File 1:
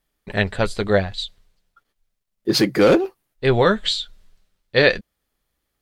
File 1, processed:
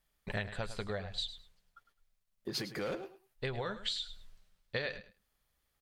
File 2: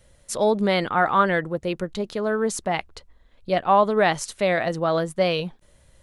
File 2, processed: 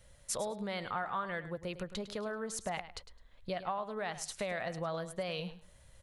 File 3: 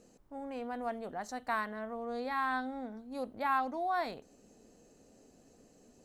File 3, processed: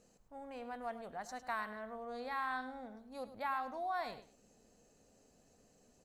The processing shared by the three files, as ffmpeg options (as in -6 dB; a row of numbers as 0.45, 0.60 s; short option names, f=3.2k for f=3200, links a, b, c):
-filter_complex "[0:a]acompressor=threshold=-28dB:ratio=20,equalizer=f=310:t=o:w=1.1:g=-7.5,asplit=2[a][b];[b]aecho=0:1:105|210:0.224|0.0425[c];[a][c]amix=inputs=2:normalize=0,volume=-3.5dB"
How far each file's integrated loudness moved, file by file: -19.5, -16.0, -5.5 LU